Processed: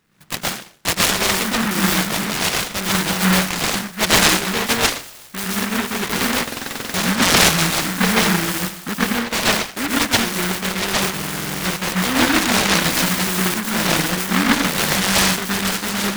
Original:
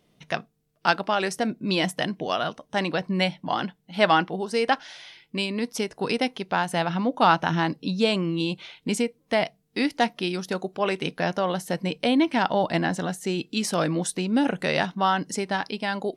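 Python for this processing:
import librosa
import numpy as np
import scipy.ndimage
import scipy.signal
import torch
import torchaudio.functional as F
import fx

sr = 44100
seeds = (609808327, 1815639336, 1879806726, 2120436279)

y = fx.rattle_buzz(x, sr, strikes_db=-37.0, level_db=-19.0)
y = fx.peak_eq(y, sr, hz=7300.0, db=13.0, octaves=1.5, at=(12.77, 13.4))
y = fx.rev_plate(y, sr, seeds[0], rt60_s=0.52, hf_ratio=0.9, predelay_ms=105, drr_db=-4.5)
y = fx.buffer_glitch(y, sr, at_s=(6.43, 11.13), block=2048, repeats=10)
y = fx.noise_mod_delay(y, sr, seeds[1], noise_hz=1400.0, depth_ms=0.44)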